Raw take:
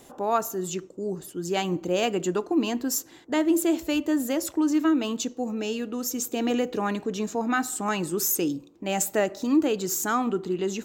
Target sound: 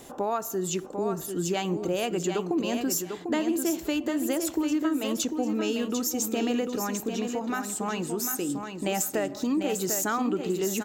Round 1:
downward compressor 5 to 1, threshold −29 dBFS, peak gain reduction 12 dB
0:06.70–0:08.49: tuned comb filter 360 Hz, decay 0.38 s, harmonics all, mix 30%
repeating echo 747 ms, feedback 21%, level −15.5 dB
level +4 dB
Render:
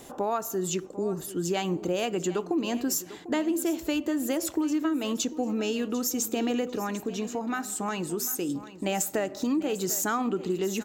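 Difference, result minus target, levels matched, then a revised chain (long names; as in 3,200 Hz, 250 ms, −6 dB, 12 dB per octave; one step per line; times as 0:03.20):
echo-to-direct −9 dB
downward compressor 5 to 1, threshold −29 dBFS, peak gain reduction 12 dB
0:06.70–0:08.49: tuned comb filter 360 Hz, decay 0.38 s, harmonics all, mix 30%
repeating echo 747 ms, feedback 21%, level −6.5 dB
level +4 dB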